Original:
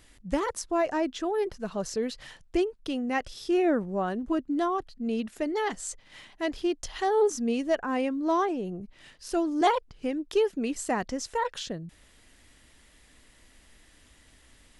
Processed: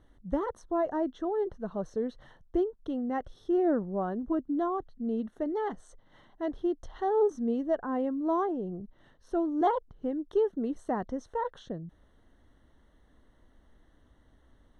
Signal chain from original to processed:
moving average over 18 samples
level −1.5 dB

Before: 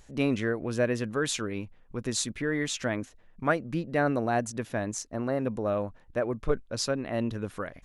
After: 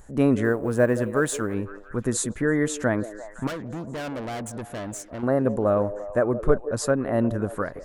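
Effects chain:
0:00.44–0:01.54: mu-law and A-law mismatch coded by A
flat-topped bell 3,600 Hz −12.5 dB
0:03.47–0:05.23: tube saturation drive 37 dB, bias 0.4
echo through a band-pass that steps 171 ms, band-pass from 450 Hz, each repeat 0.7 octaves, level −10 dB
level +7 dB

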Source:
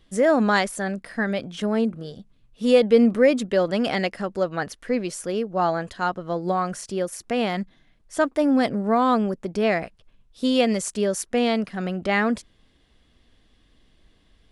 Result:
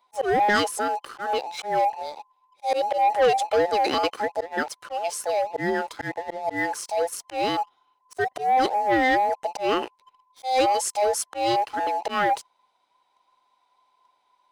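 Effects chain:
frequency inversion band by band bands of 1,000 Hz
high-pass filter 220 Hz 6 dB per octave
volume swells 156 ms
leveller curve on the samples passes 2
level −5 dB

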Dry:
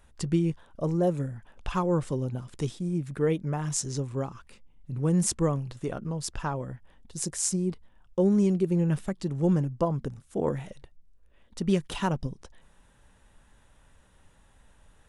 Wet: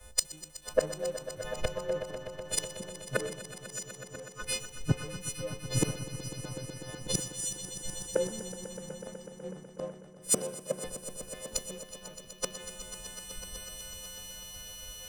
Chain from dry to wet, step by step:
every partial snapped to a pitch grid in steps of 3 semitones
parametric band 520 Hz +14 dB 0.42 octaves
in parallel at −2 dB: downward compressor, threshold −31 dBFS, peak gain reduction 19 dB
on the sum: gate with flip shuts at −23 dBFS, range −32 dB
leveller curve on the samples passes 2
echo that builds up and dies away 124 ms, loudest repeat 5, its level −9 dB
multiband upward and downward expander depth 100%

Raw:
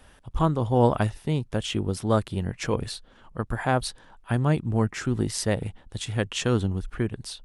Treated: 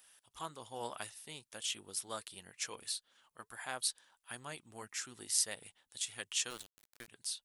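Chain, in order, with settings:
flanger 1.6 Hz, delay 0.1 ms, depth 3.6 ms, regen −74%
first difference
0:06.50–0:07.08: centre clipping without the shift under −50 dBFS
level +4.5 dB

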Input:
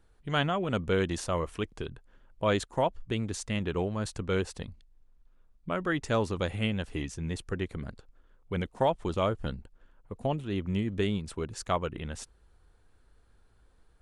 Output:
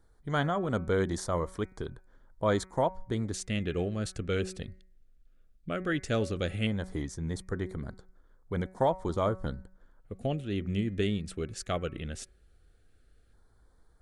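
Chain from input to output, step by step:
auto-filter notch square 0.15 Hz 960–2,700 Hz
hum removal 187.3 Hz, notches 13

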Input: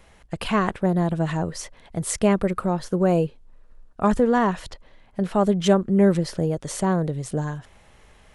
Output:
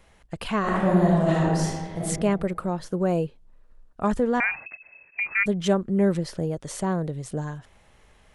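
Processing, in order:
0:00.60–0:02.00: thrown reverb, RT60 1.5 s, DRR −6 dB
0:04.40–0:05.46: voice inversion scrambler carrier 2,600 Hz
level −4 dB

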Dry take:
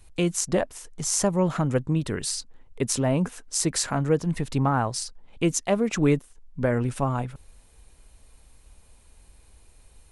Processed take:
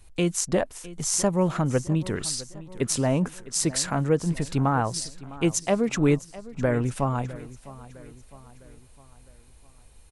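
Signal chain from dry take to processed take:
repeating echo 657 ms, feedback 49%, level −18 dB

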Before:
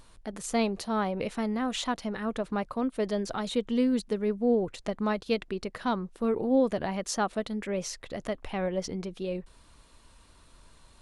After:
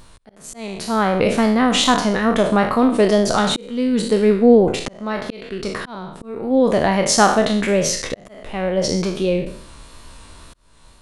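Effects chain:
peak hold with a decay on every bin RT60 0.59 s
tape wow and flutter 29 cents
volume swells 704 ms
automatic gain control gain up to 6 dB
level +7.5 dB

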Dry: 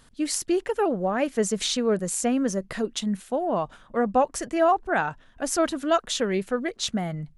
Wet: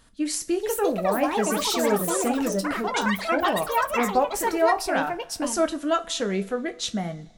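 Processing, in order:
coupled-rooms reverb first 0.22 s, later 1.7 s, from −22 dB, DRR 6.5 dB
delay with pitch and tempo change per echo 491 ms, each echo +6 semitones, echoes 3
level −2 dB

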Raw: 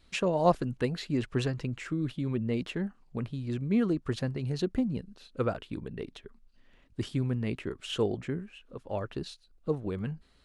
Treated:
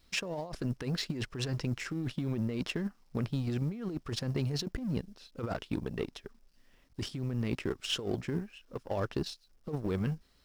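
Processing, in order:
mu-law and A-law mismatch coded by A
parametric band 5,300 Hz +9 dB 0.3 octaves
compressor whose output falls as the input rises −35 dBFS, ratio −1
level +1.5 dB

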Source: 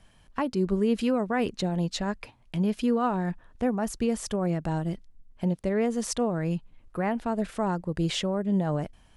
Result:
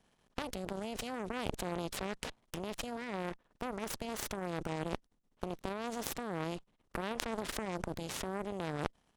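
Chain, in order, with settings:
compressor on every frequency bin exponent 0.6
output level in coarse steps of 19 dB
harmonic generator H 3 −10 dB, 4 −14 dB, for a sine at −19 dBFS
level +9.5 dB

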